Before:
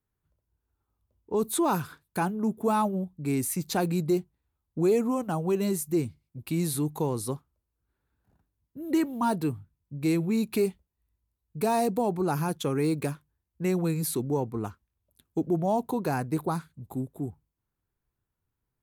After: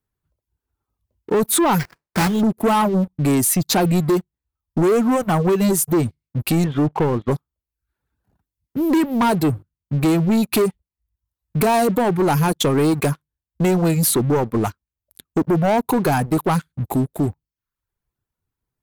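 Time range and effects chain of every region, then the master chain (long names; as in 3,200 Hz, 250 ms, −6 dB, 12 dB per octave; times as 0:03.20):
0:01.78–0:02.40: spectral envelope flattened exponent 0.3 + low-pass filter 4,500 Hz 24 dB per octave + sample-rate reduction 3,400 Hz, jitter 20%
0:06.64–0:07.31: Butterworth low-pass 3,300 Hz 96 dB per octave + mains-hum notches 50/100 Hz
whole clip: reverb reduction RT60 0.67 s; downward compressor 2 to 1, threshold −33 dBFS; leveller curve on the samples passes 3; level +8 dB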